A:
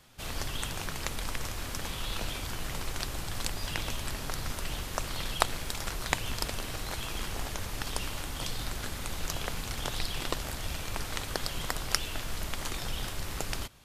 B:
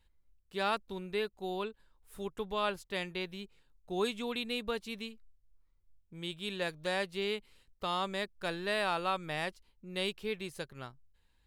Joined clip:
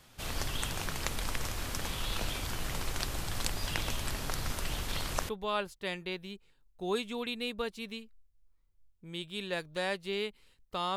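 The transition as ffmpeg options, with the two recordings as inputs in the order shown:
-filter_complex "[0:a]apad=whole_dur=10.96,atrim=end=10.96,asplit=2[s0][s1];[s0]atrim=end=4.882[s2];[s1]atrim=start=4.878:end=5.292,asetpts=PTS-STARTPTS,areverse[s3];[1:a]atrim=start=2.378:end=8.05[s4];[s2][s3]acrossfade=d=0.004:c1=hsin:c2=hsin[s5];[s5][s4]acrossfade=d=0.004:c1=hsin:c2=hsin"

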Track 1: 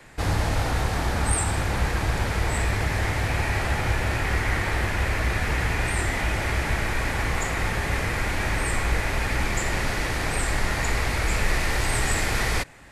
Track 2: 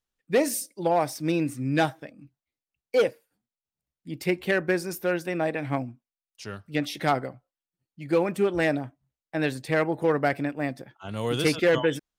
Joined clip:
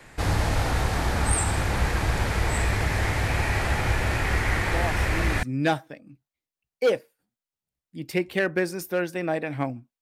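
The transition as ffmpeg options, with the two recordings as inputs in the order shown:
-filter_complex "[1:a]asplit=2[s0][s1];[0:a]apad=whole_dur=10.01,atrim=end=10.01,atrim=end=5.432[s2];[s1]atrim=start=1.548:end=6.13[s3];[s0]atrim=start=0.74:end=1.55,asetpts=PTS-STARTPTS,volume=0.376,afade=t=in:d=0.004:c=hsin,afade=t=out:st=0.806:d=0.004:c=hsin,adelay=4620[s4];[s2][s3]acrossfade=d=0.004:c1=hsin:c2=hsin[s5];[s5][s4]amix=inputs=2:normalize=0"

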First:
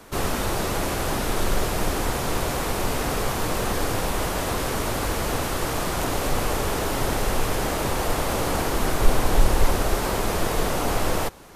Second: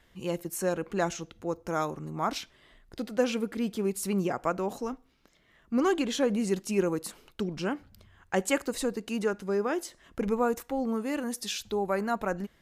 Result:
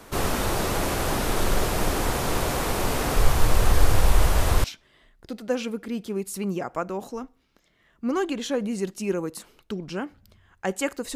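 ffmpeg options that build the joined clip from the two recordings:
-filter_complex "[0:a]asplit=3[s0][s1][s2];[s0]afade=t=out:st=3.16:d=0.02[s3];[s1]asubboost=boost=5:cutoff=100,afade=t=in:st=3.16:d=0.02,afade=t=out:st=4.64:d=0.02[s4];[s2]afade=t=in:st=4.64:d=0.02[s5];[s3][s4][s5]amix=inputs=3:normalize=0,apad=whole_dur=11.15,atrim=end=11.15,atrim=end=4.642[s6];[1:a]atrim=start=2.328:end=8.84[s7];[s6][s7]acrossfade=d=0.004:c1=hsin:c2=hsin"

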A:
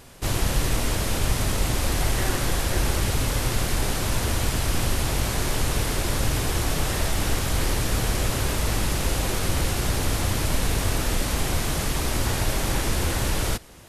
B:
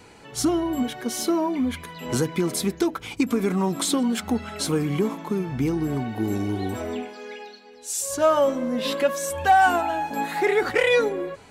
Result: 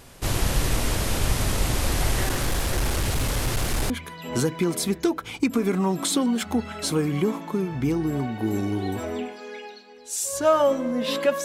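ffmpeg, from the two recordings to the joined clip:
-filter_complex "[0:a]asettb=1/sr,asplit=3[s0][s1][s2];[s0]atrim=end=2.254[s3];[s1]atrim=start=2.25:end=3.9,asetpts=PTS-STARTPTS,afade=t=in:d=0.004:c=qsin,afade=t=out:st=1.646:d=0.004:c=qsin,asoftclip=type=hard:threshold=0.112[s4];[s2]atrim=start=3.896[s5];[s3][s4]acrossfade=d=0.004:c1=hsin:c2=qsin[s6];[s6][s5]acrossfade=d=0.004:c1=qsin:c2=hsin,apad=whole_dur=11.44,atrim=end=11.44,atrim=end=3.902[s7];[1:a]atrim=start=1.668:end=9.21[s8];[s7][s8]acrossfade=d=0.004:c1=hsin:c2=hsin"

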